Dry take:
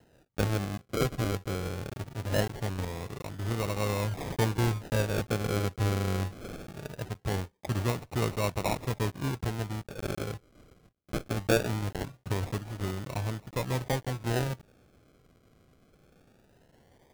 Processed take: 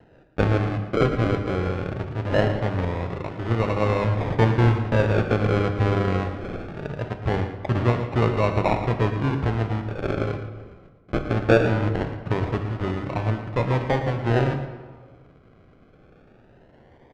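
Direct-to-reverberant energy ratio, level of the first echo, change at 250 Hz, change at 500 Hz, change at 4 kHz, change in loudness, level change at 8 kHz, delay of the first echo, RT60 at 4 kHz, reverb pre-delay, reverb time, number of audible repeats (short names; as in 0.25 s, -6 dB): 6.5 dB, -12.0 dB, +9.0 dB, +9.5 dB, +1.5 dB, +8.5 dB, under -10 dB, 0.114 s, 0.95 s, 28 ms, 1.5 s, 1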